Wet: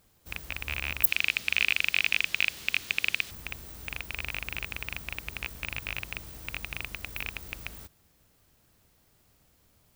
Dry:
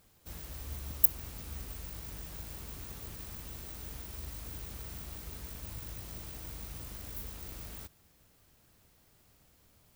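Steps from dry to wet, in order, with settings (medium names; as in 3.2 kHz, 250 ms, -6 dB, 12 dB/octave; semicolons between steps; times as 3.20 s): rattle on loud lows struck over -41 dBFS, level -17 dBFS; 1.07–3.31 s: frequency weighting D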